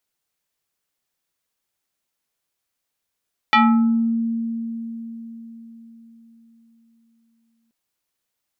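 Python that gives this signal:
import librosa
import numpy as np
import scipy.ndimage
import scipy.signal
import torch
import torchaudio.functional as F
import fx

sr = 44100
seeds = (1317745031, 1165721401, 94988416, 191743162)

y = fx.fm2(sr, length_s=4.18, level_db=-10, carrier_hz=229.0, ratio=4.71, index=2.7, index_s=0.65, decay_s=4.51, shape='exponential')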